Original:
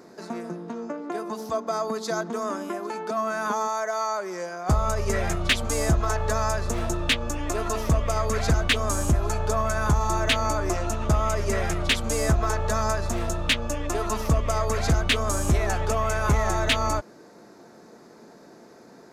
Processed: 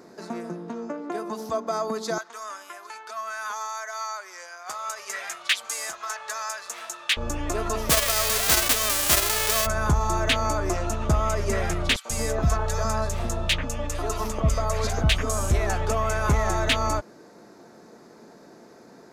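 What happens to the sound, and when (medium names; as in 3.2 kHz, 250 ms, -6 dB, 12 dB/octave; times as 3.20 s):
2.18–7.17 s: high-pass 1.3 kHz
7.89–9.65 s: formants flattened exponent 0.1
11.96–15.51 s: three bands offset in time highs, mids, lows 90/140 ms, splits 340/1600 Hz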